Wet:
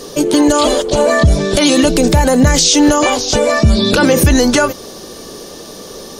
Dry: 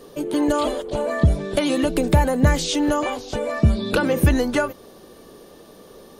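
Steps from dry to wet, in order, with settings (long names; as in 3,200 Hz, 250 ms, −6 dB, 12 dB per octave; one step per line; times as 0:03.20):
parametric band 5,800 Hz +12.5 dB 1.1 octaves
boost into a limiter +13.5 dB
level −1 dB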